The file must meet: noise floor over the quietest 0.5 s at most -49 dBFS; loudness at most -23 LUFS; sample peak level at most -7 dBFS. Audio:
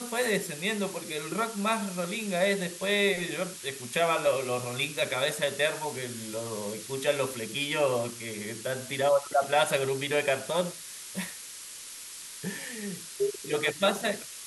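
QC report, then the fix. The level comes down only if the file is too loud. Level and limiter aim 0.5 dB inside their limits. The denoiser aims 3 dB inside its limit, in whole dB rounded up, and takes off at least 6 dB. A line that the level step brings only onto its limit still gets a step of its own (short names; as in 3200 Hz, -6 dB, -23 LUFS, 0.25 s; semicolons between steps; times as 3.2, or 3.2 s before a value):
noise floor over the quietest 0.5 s -43 dBFS: fail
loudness -29.5 LUFS: OK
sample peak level -11.0 dBFS: OK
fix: denoiser 9 dB, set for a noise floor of -43 dBFS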